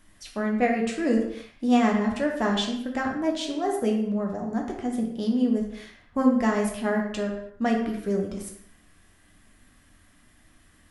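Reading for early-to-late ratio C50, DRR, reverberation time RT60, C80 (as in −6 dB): 4.5 dB, 0.0 dB, non-exponential decay, 7.5 dB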